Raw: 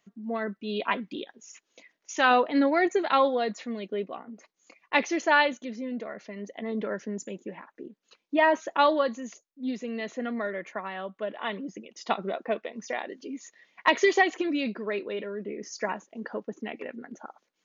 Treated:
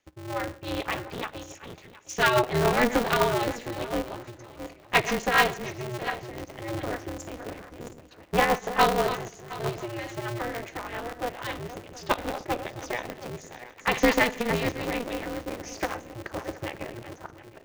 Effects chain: regenerating reverse delay 0.359 s, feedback 41%, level -10 dB; on a send at -15.5 dB: reverb RT60 0.70 s, pre-delay 37 ms; on the sum: rotary speaker horn 7 Hz; dynamic EQ 200 Hz, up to -5 dB, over -44 dBFS, Q 1.8; polarity switched at an audio rate 120 Hz; gain +2.5 dB

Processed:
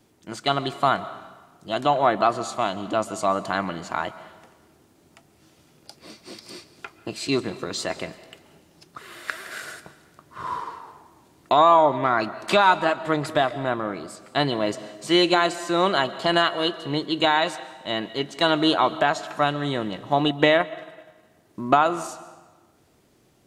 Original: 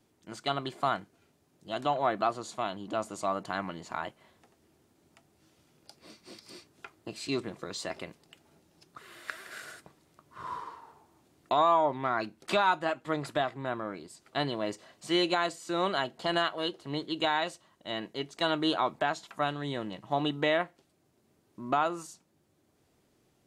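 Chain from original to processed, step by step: digital reverb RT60 1.3 s, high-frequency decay 0.9×, pre-delay 95 ms, DRR 15 dB; 20.24–21.88 transient shaper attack +3 dB, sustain -4 dB; gain +8.5 dB

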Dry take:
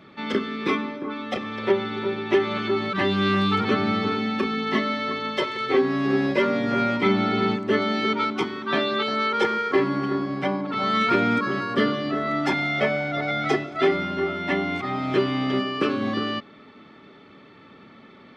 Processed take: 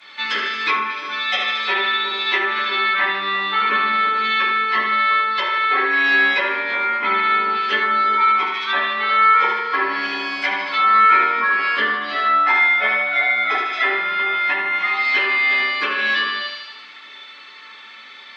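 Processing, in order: HPF 480 Hz 12 dB/oct; tilt shelf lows -10 dB; thinning echo 75 ms, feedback 62%, high-pass 690 Hz, level -3 dB; treble ducked by the level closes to 1500 Hz, closed at -19 dBFS; reverb RT60 0.40 s, pre-delay 3 ms, DRR -10.5 dB; gain -3 dB

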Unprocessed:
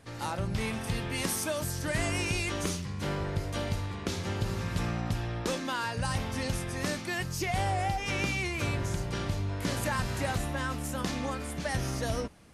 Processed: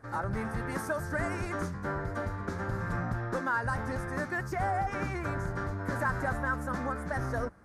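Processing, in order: resonant high shelf 2100 Hz -10.5 dB, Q 3; notches 50/100/150 Hz; time stretch by phase-locked vocoder 0.61×

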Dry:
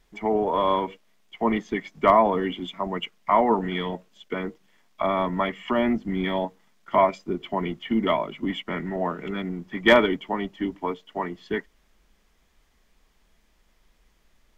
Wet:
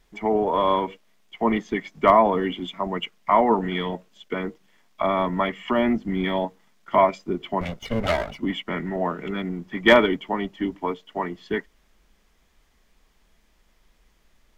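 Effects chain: 7.61–8.39 minimum comb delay 1.4 ms; gain +1.5 dB

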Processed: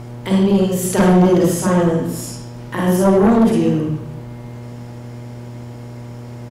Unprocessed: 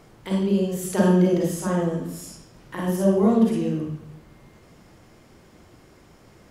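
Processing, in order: buzz 120 Hz, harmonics 8, -42 dBFS -8 dB/oct; added harmonics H 5 -8 dB, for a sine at -5.5 dBFS; speakerphone echo 80 ms, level -7 dB

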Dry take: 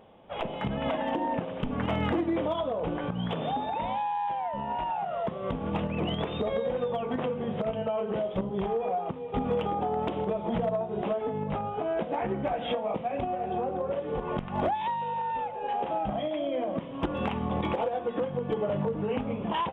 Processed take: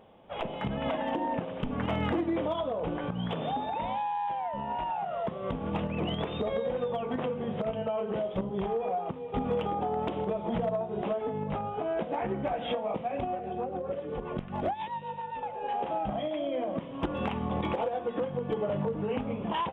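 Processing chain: 13.39–15.43 rotary speaker horn 7.5 Hz; gain -1.5 dB

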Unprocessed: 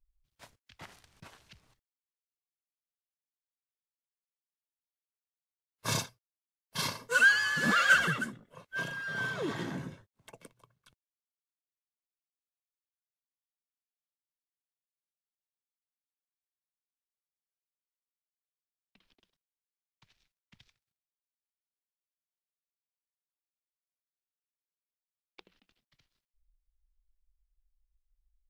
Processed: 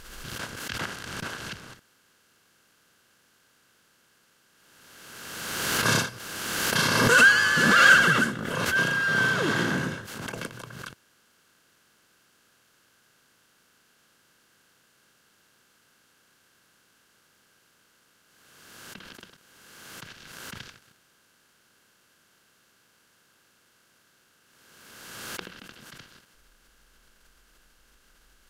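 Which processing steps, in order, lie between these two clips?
per-bin compression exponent 0.6; backwards sustainer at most 31 dB/s; gain +4 dB

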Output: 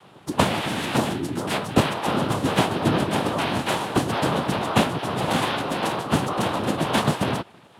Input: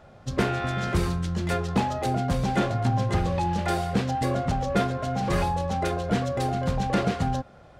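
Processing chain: added harmonics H 3 -17 dB, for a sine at -12 dBFS; noise vocoder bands 4; formant shift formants +5 st; gain +6.5 dB

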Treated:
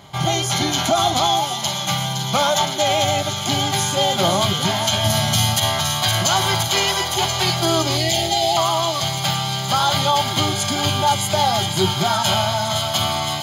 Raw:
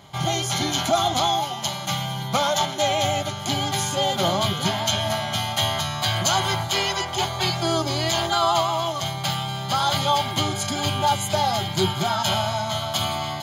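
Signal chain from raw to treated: 5.04–5.6 tone controls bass +9 dB, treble +11 dB; 7.97–8.57 elliptic band-stop 820–1900 Hz; thin delay 0.514 s, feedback 80%, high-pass 2900 Hz, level -7 dB; maximiser +10 dB; gain -6 dB

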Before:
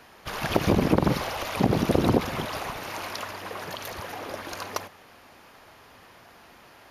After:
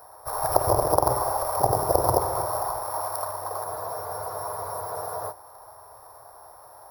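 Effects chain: sample sorter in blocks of 8 samples; EQ curve 120 Hz 0 dB, 230 Hz -25 dB, 320 Hz -7 dB, 660 Hz +10 dB, 1000 Hz +10 dB, 2900 Hz -22 dB, 5000 Hz -4 dB, 7300 Hz -16 dB, 11000 Hz +10 dB; spring tank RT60 1.4 s, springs 47/52 ms, chirp 65 ms, DRR 8 dB; spectral freeze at 3.66, 1.65 s; gain -2 dB

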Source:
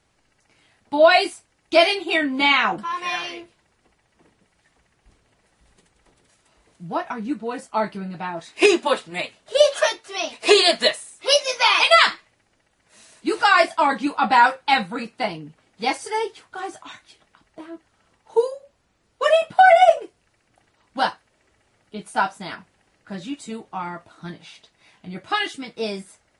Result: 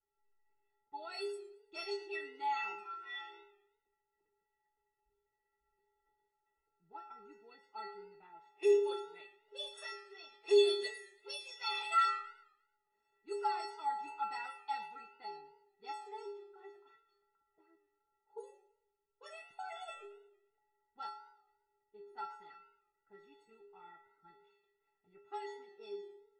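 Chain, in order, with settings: low-pass opened by the level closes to 1500 Hz, open at -15.5 dBFS; metallic resonator 400 Hz, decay 0.81 s, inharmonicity 0.03; warbling echo 0.111 s, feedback 42%, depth 141 cents, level -20 dB

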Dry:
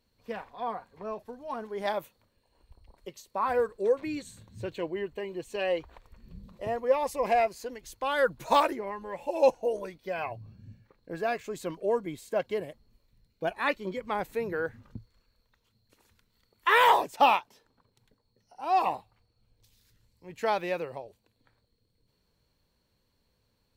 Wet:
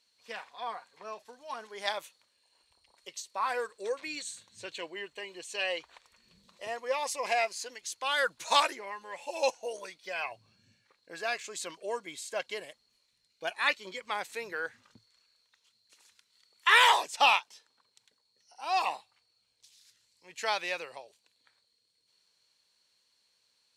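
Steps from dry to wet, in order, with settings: weighting filter ITU-R 468; gain -2.5 dB

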